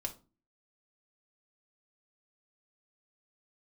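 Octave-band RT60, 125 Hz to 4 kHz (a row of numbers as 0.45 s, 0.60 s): 0.50 s, 0.55 s, 0.35 s, 0.30 s, 0.25 s, 0.25 s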